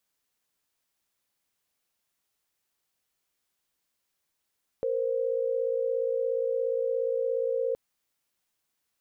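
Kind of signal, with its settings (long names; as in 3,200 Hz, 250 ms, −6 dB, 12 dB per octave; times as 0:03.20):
held notes A#4/C5 sine, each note −28 dBFS 2.92 s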